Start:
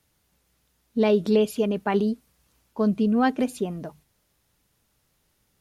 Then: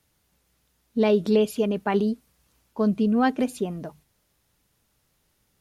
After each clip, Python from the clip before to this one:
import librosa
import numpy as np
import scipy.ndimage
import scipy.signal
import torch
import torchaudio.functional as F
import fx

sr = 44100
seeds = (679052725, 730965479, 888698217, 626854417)

y = x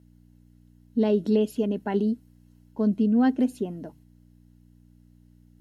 y = fx.peak_eq(x, sr, hz=260.0, db=10.0, octaves=1.0)
y = fx.add_hum(y, sr, base_hz=60, snr_db=24)
y = fx.notch_comb(y, sr, f0_hz=1200.0)
y = y * librosa.db_to_amplitude(-6.5)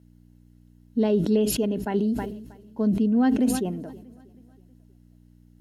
y = fx.echo_feedback(x, sr, ms=319, feedback_pct=54, wet_db=-22.5)
y = fx.sustainer(y, sr, db_per_s=56.0)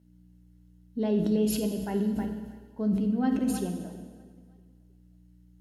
y = fx.rev_fdn(x, sr, rt60_s=1.5, lf_ratio=1.05, hf_ratio=0.9, size_ms=31.0, drr_db=4.0)
y = y * librosa.db_to_amplitude(-7.0)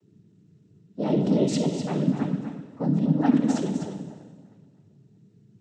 y = fx.noise_vocoder(x, sr, seeds[0], bands=12)
y = y + 10.0 ** (-8.5 / 20.0) * np.pad(y, (int(251 * sr / 1000.0), 0))[:len(y)]
y = y * librosa.db_to_amplitude(4.0)